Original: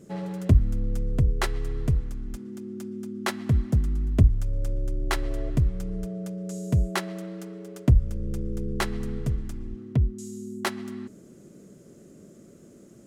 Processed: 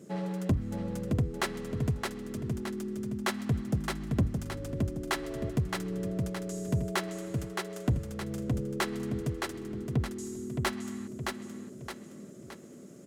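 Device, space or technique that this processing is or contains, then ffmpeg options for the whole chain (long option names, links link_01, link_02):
saturation between pre-emphasis and de-emphasis: -af "highpass=140,highshelf=frequency=4400:gain=9.5,aecho=1:1:618|1236|1854|2472|3090:0.531|0.228|0.0982|0.0422|0.0181,asoftclip=type=tanh:threshold=-19dB,highshelf=frequency=4400:gain=-9.5"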